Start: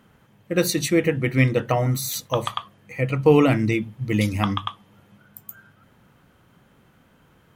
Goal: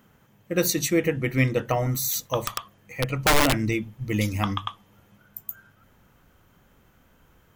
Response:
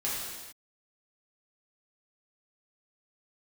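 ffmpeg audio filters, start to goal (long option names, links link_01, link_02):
-filter_complex "[0:a]aexciter=amount=1.8:drive=3.1:freq=5700,asettb=1/sr,asplit=3[link_01][link_02][link_03];[link_01]atrim=end=2.404[link_04];[link_02]atrim=start=2.4:end=3.59,asetpts=PTS-STARTPTS,afade=type=in:duration=0.004:curve=qsin,afade=type=out:start_time=1.186:duration=0.004:curve=qsin,aeval=exprs='(mod(3.35*val(0)+1,2)-1)/3.35':channel_layout=same[link_05];[link_03]atrim=start=3.586[link_06];[link_04][link_05]acrossfade=duration=0.004:curve1=hsin:curve2=qsin[link_07];[link_07][link_06]acrossfade=duration=0.004:curve1=qsin:curve2=hsin,asubboost=boost=4:cutoff=64,volume=-2.5dB"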